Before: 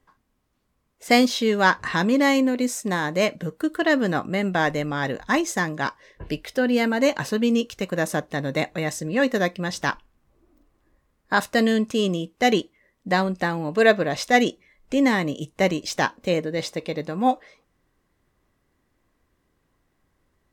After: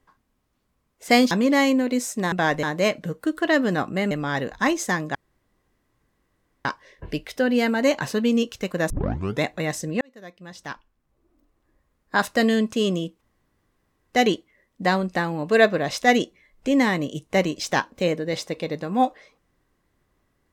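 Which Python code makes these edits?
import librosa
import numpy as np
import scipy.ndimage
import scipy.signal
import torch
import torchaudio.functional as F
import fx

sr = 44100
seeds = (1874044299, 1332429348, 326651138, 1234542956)

y = fx.edit(x, sr, fx.cut(start_s=1.31, length_s=0.68),
    fx.move(start_s=4.48, length_s=0.31, to_s=3.0),
    fx.insert_room_tone(at_s=5.83, length_s=1.5),
    fx.tape_start(start_s=8.08, length_s=0.52),
    fx.fade_in_span(start_s=9.19, length_s=2.3),
    fx.insert_room_tone(at_s=12.39, length_s=0.92), tone=tone)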